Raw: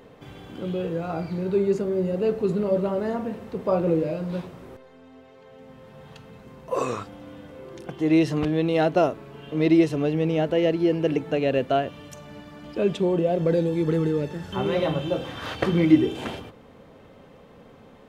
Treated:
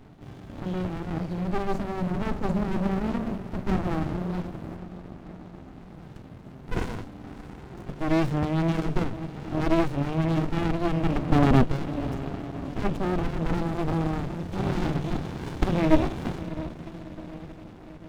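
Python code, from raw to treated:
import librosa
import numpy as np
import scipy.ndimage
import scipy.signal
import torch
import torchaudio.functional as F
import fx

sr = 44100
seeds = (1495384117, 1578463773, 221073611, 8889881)

y = fx.peak_eq(x, sr, hz=250.0, db=12.5, octaves=2.5, at=(11.22, 11.63), fade=0.02)
y = fx.echo_diffused(y, sr, ms=618, feedback_pct=59, wet_db=-14.5)
y = fx.running_max(y, sr, window=65)
y = F.gain(torch.from_numpy(y), 2.0).numpy()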